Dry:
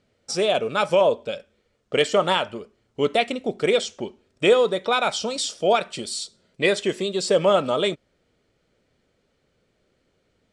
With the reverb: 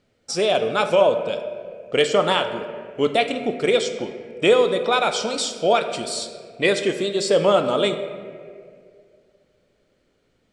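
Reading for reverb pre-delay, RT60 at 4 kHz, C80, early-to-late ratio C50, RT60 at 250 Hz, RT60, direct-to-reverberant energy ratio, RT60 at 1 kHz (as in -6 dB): 3 ms, 1.2 s, 10.0 dB, 9.0 dB, 2.4 s, 2.2 s, 7.5 dB, 1.8 s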